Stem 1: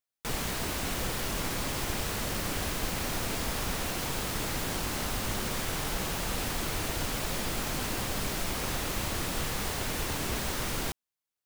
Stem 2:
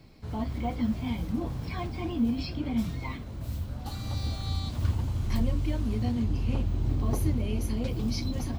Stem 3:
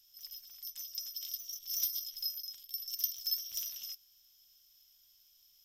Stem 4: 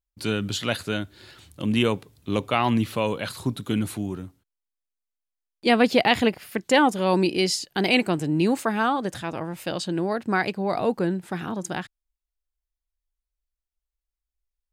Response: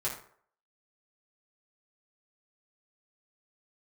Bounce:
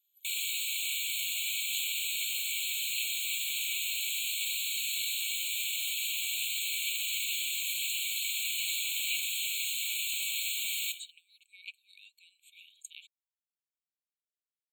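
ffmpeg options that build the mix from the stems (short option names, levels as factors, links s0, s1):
-filter_complex "[0:a]volume=1.33,asplit=2[s0][s1];[s1]volume=0.531[s2];[1:a]adelay=500,volume=1.12[s3];[2:a]equalizer=f=970:t=o:w=2.4:g=-11.5,volume=0.447[s4];[3:a]acompressor=threshold=0.0794:ratio=6,adelay=1200,volume=0.422[s5];[4:a]atrim=start_sample=2205[s6];[s2][s6]afir=irnorm=-1:irlink=0[s7];[s0][s3][s4][s5][s7]amix=inputs=5:normalize=0,afftfilt=real='re*eq(mod(floor(b*sr/1024/2200),2),1)':imag='im*eq(mod(floor(b*sr/1024/2200),2),1)':win_size=1024:overlap=0.75"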